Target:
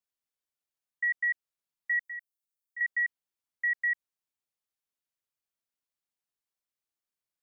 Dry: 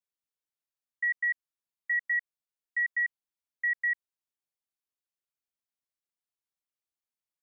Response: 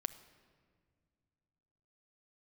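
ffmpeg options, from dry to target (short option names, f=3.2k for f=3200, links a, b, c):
-filter_complex "[0:a]asettb=1/sr,asplit=3[a][b][c];[a]atrim=end=2.014[d];[b]atrim=start=2.01:end=2.81,asetpts=PTS-STARTPTS,afade=t=in:d=0.004:c=qsin,afade=t=out:st=0.796:d=0.004:c=qsin,aderivative[e];[c]atrim=start=2.806[f];[d][e]acrossfade=d=0.004:c1=hsin:c2=qsin[g];[g][f]acrossfade=d=0.004:c1=qsin:c2=hsin"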